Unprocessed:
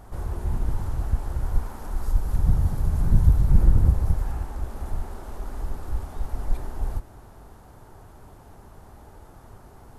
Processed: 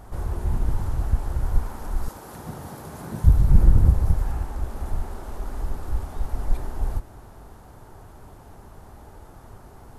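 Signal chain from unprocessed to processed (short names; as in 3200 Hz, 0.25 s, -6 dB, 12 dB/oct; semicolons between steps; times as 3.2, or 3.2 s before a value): 2.08–3.24 HPF 280 Hz 12 dB/oct; gain +2 dB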